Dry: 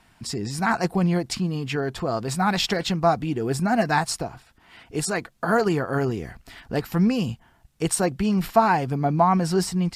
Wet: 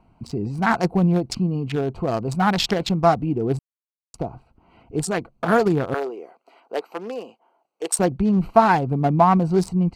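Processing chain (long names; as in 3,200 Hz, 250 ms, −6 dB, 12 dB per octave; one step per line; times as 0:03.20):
adaptive Wiener filter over 25 samples
0:03.59–0:04.14: silence
0:05.94–0:07.99: high-pass filter 420 Hz 24 dB per octave
level +3.5 dB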